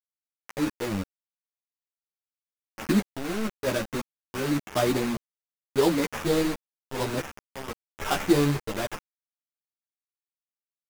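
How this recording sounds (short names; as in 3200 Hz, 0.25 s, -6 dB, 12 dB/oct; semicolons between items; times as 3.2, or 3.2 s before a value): aliases and images of a low sample rate 4200 Hz, jitter 20%; random-step tremolo 3 Hz, depth 80%; a quantiser's noise floor 6-bit, dither none; a shimmering, thickened sound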